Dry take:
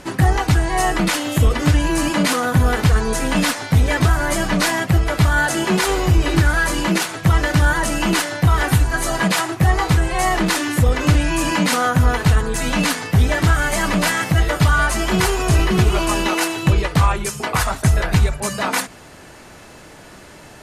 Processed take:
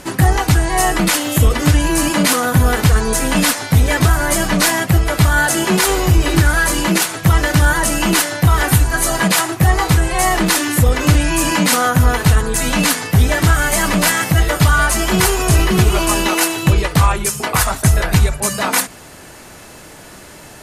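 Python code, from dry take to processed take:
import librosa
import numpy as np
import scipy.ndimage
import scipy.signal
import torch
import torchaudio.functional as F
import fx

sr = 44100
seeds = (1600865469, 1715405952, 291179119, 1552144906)

y = fx.high_shelf(x, sr, hz=8700.0, db=11.5)
y = F.gain(torch.from_numpy(y), 2.5).numpy()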